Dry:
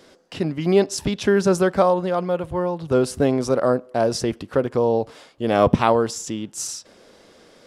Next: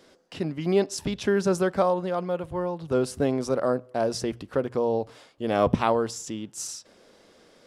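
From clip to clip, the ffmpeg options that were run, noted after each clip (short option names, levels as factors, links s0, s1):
-af "bandreject=f=60:t=h:w=6,bandreject=f=120:t=h:w=6,volume=0.531"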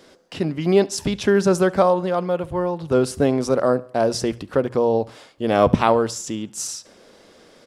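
-af "aecho=1:1:70|140|210:0.0708|0.029|0.0119,volume=2"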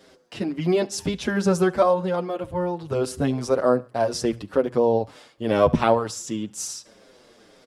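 -filter_complex "[0:a]asplit=2[s0][s1];[s1]adelay=7.1,afreqshift=-2[s2];[s0][s2]amix=inputs=2:normalize=1"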